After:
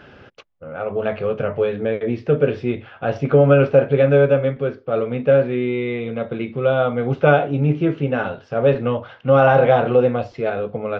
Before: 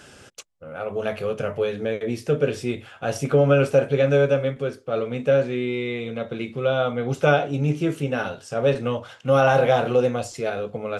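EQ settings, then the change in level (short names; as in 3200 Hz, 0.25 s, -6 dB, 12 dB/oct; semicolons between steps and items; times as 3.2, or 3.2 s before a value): Gaussian blur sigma 2.7 samples; +4.5 dB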